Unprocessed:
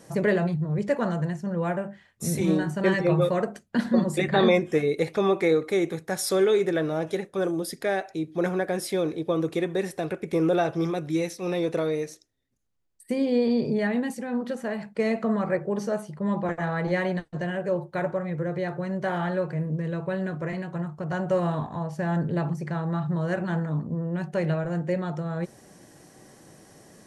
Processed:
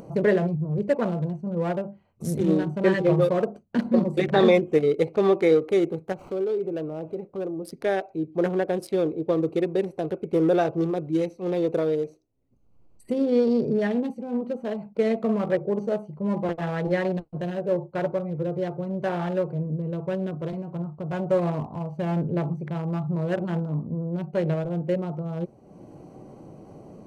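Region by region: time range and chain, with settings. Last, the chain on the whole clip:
0:06.12–0:07.65: running median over 9 samples + downward compressor 2 to 1, threshold −32 dBFS
whole clip: adaptive Wiener filter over 25 samples; dynamic equaliser 440 Hz, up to +4 dB, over −34 dBFS, Q 1.4; upward compression, threshold −35 dBFS

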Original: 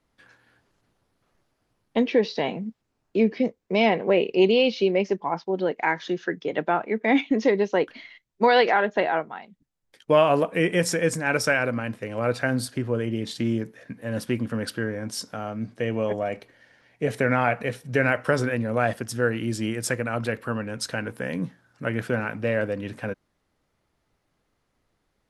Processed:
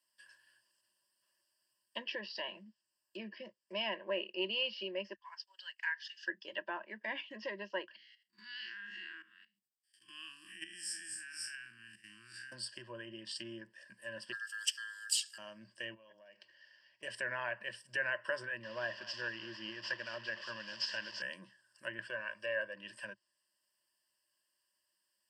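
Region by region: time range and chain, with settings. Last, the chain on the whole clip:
0:05.13–0:06.26: high-pass filter 1,400 Hz 24 dB per octave + transient designer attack 0 dB, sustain −4 dB
0:07.96–0:12.52: spectrum smeared in time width 120 ms + inverse Chebyshev band-stop filter 450–910 Hz + output level in coarse steps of 13 dB
0:14.32–0:15.38: drawn EQ curve 160 Hz 0 dB, 510 Hz −28 dB, 2,300 Hz −11 dB, 3,800 Hz +10 dB + ring modulation 1,500 Hz
0:15.94–0:17.03: inverse Chebyshev low-pass filter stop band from 9,900 Hz + downward compressor 8 to 1, threshold −40 dBFS
0:18.63–0:21.22: linear delta modulator 32 kbit/s, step −31 dBFS + single-tap delay 230 ms −17 dB
0:22.08–0:22.74: low-shelf EQ 150 Hz −10 dB + comb filter 1.8 ms, depth 51%
whole clip: EQ curve with evenly spaced ripples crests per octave 1.3, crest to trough 17 dB; treble cut that deepens with the level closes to 2,300 Hz, closed at −18.5 dBFS; first difference

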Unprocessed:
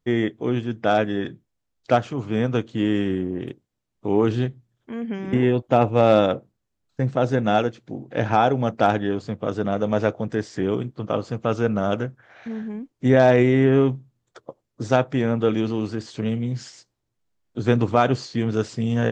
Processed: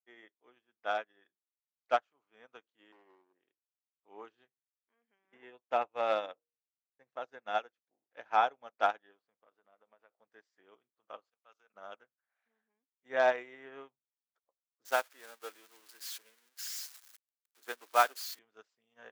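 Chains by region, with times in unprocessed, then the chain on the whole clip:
0:02.92–0:03.33: loudspeaker in its box 170–2,200 Hz, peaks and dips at 380 Hz +6 dB, 680 Hz +7 dB, 1,500 Hz −7 dB + hard clipping −20 dBFS
0:06.17–0:07.15: parametric band 1,400 Hz −6 dB 0.21 octaves + hum removal 157.1 Hz, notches 3
0:09.20–0:10.21: high-frequency loss of the air 170 metres + downward compressor 20 to 1, threshold −22 dBFS
0:11.29–0:11.74: spectral tilt +3 dB per octave + output level in coarse steps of 15 dB + multiband upward and downward expander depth 40%
0:14.85–0:18.39: spike at every zero crossing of −14 dBFS + high-pass filter 260 Hz 24 dB per octave + parametric band 1,600 Hz +4 dB 0.28 octaves
whole clip: high-pass filter 930 Hz 12 dB per octave; high-shelf EQ 3,400 Hz −9.5 dB; expander for the loud parts 2.5 to 1, over −43 dBFS

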